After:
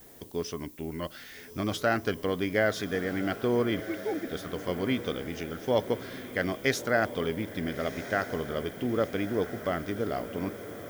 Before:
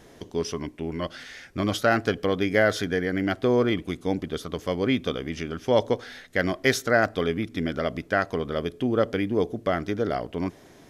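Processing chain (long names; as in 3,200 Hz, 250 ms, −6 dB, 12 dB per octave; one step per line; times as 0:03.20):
0:03.80–0:04.28: three sine waves on the formant tracks
pitch vibrato 0.78 Hz 30 cents
background noise violet −49 dBFS
feedback delay with all-pass diffusion 1,327 ms, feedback 56%, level −12 dB
level −5 dB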